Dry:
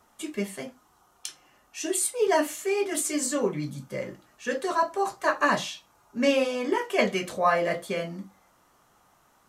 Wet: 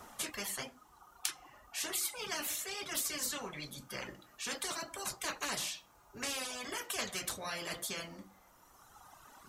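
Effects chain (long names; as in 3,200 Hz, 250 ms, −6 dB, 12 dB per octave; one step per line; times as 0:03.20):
reverb reduction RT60 1.8 s
every bin compressed towards the loudest bin 4 to 1
level −3 dB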